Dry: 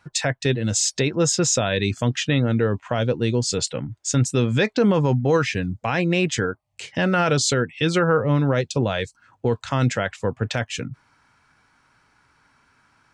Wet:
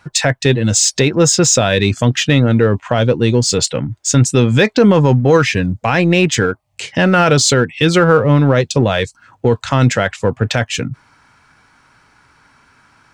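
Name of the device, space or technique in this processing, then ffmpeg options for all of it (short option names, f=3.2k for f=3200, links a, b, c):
parallel distortion: -filter_complex "[0:a]asplit=2[a][b];[b]asoftclip=type=hard:threshold=-25dB,volume=-12dB[c];[a][c]amix=inputs=2:normalize=0,volume=7.5dB"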